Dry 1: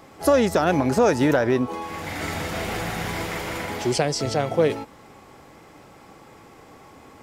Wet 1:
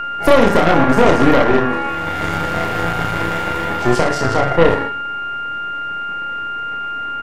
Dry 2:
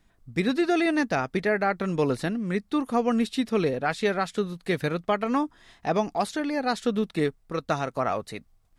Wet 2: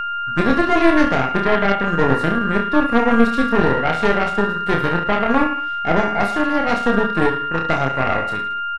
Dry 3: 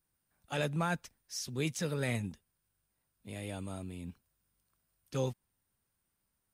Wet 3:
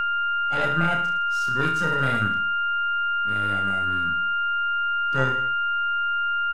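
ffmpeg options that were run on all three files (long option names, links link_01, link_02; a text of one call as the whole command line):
ffmpeg -i in.wav -filter_complex "[0:a]highshelf=frequency=2100:gain=-10.5,asplit=2[link_01][link_02];[link_02]aecho=0:1:30|66|109.2|161|223.2:0.631|0.398|0.251|0.158|0.1[link_03];[link_01][link_03]amix=inputs=2:normalize=0,aeval=exprs='val(0)+0.0501*sin(2*PI*1400*n/s)':channel_layout=same,aeval=exprs='0.708*(cos(1*acos(clip(val(0)/0.708,-1,1)))-cos(1*PI/2))+0.112*(cos(8*acos(clip(val(0)/0.708,-1,1)))-cos(8*PI/2))':channel_layout=same,volume=4.5dB" out.wav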